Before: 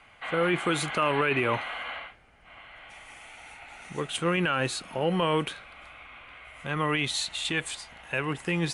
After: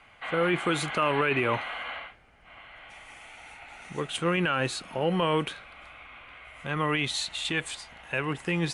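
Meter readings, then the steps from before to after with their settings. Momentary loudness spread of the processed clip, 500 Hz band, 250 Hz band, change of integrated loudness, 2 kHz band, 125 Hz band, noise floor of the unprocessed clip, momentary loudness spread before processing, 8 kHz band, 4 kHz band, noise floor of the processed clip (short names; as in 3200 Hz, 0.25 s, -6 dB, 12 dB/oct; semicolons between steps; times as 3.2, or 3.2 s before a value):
21 LU, 0.0 dB, 0.0 dB, 0.0 dB, 0.0 dB, 0.0 dB, -56 dBFS, 21 LU, -2.0 dB, -0.5 dB, -56 dBFS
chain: high shelf 9500 Hz -5.5 dB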